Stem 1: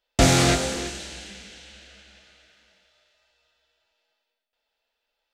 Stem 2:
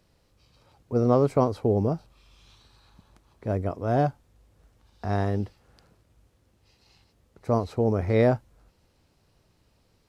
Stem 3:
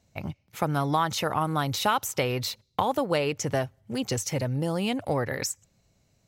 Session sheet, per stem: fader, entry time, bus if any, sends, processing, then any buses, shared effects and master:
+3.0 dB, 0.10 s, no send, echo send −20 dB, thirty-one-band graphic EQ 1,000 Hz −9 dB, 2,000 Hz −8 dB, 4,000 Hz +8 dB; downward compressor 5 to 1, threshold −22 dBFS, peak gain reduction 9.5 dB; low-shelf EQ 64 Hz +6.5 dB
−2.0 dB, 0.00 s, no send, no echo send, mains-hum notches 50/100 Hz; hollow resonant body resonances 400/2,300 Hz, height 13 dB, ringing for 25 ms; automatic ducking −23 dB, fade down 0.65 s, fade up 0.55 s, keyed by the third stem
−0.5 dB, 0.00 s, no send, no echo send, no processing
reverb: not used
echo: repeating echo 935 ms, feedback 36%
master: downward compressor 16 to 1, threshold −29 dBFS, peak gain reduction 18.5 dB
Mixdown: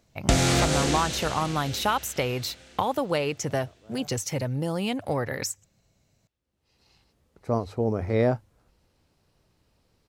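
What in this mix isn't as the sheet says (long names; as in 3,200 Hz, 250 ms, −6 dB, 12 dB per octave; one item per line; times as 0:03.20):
stem 1: missing thirty-one-band graphic EQ 1,000 Hz −9 dB, 2,000 Hz −8 dB, 4,000 Hz +8 dB
stem 2: missing hollow resonant body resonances 400/2,300 Hz, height 13 dB, ringing for 25 ms
master: missing downward compressor 16 to 1, threshold −29 dBFS, peak gain reduction 18.5 dB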